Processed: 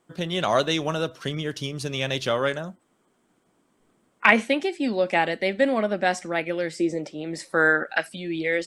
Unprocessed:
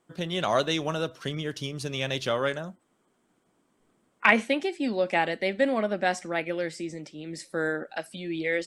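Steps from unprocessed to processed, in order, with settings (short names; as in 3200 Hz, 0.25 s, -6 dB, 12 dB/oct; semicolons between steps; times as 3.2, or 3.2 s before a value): 6.79–8.08 bell 430 Hz -> 2100 Hz +11 dB 1.6 oct; gain +3 dB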